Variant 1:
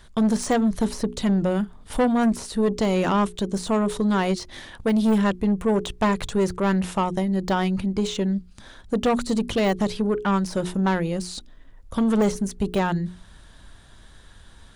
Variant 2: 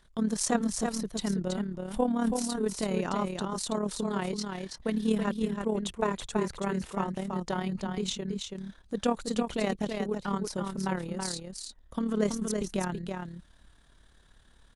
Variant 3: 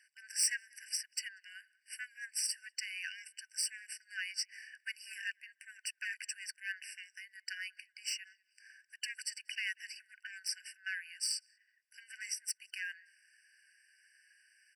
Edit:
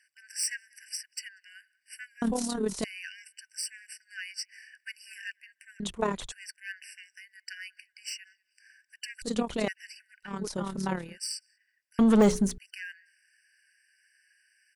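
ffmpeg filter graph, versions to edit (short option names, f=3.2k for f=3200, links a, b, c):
-filter_complex "[1:a]asplit=4[a][b][c][d];[2:a]asplit=6[e][f][g][h][i][j];[e]atrim=end=2.222[k];[a]atrim=start=2.218:end=2.842[l];[f]atrim=start=2.838:end=5.802[m];[b]atrim=start=5.798:end=6.322[n];[g]atrim=start=6.318:end=9.222[o];[c]atrim=start=9.218:end=9.682[p];[h]atrim=start=9.678:end=10.46[q];[d]atrim=start=10.22:end=11.18[r];[i]atrim=start=10.94:end=11.992[s];[0:a]atrim=start=11.988:end=12.582[t];[j]atrim=start=12.578[u];[k][l]acrossfade=d=0.004:c1=hsin:c2=hsin[v];[v][m]acrossfade=d=0.004:c1=hsin:c2=hsin[w];[w][n]acrossfade=d=0.004:c1=hsin:c2=hsin[x];[x][o]acrossfade=d=0.004:c1=hsin:c2=hsin[y];[y][p]acrossfade=d=0.004:c1=hsin:c2=hsin[z];[z][q]acrossfade=d=0.004:c1=hsin:c2=hsin[aa];[aa][r]acrossfade=d=0.24:c1=tri:c2=tri[ab];[ab][s]acrossfade=d=0.24:c1=tri:c2=tri[ac];[ac][t]acrossfade=d=0.004:c1=hsin:c2=hsin[ad];[ad][u]acrossfade=d=0.004:c1=hsin:c2=hsin"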